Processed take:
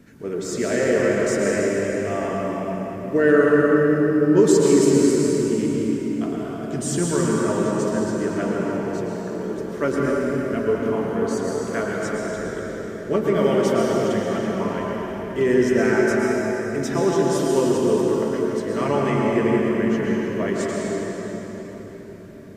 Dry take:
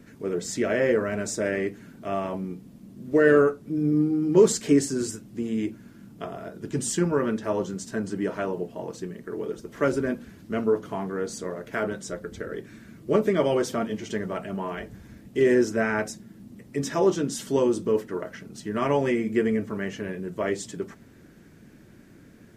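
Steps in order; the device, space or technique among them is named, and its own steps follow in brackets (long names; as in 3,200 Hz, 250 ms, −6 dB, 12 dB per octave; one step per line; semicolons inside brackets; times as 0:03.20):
cathedral (convolution reverb RT60 4.7 s, pre-delay 105 ms, DRR −3.5 dB)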